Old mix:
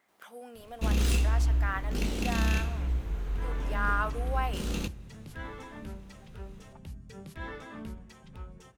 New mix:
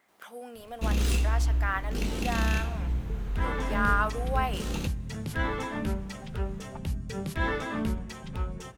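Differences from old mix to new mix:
speech +3.5 dB
second sound +11.5 dB

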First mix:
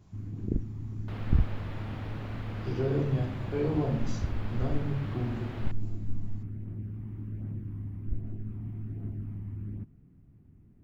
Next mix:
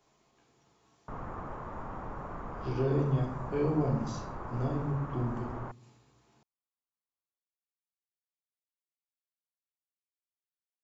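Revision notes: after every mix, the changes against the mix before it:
first sound: muted
second sound: add low-pass with resonance 1,100 Hz, resonance Q 2.7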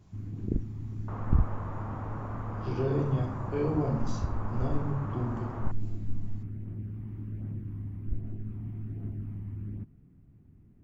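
first sound: unmuted

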